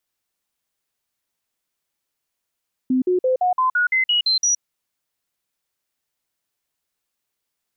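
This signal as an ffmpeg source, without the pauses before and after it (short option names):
-f lavfi -i "aevalsrc='0.178*clip(min(mod(t,0.17),0.12-mod(t,0.17))/0.005,0,1)*sin(2*PI*257*pow(2,floor(t/0.17)/2)*mod(t,0.17))':d=1.7:s=44100"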